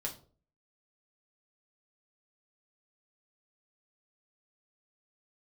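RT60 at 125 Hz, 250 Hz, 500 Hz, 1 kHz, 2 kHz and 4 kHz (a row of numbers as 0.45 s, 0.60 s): 0.55 s, 0.50 s, 0.50 s, 0.35 s, 0.25 s, 0.30 s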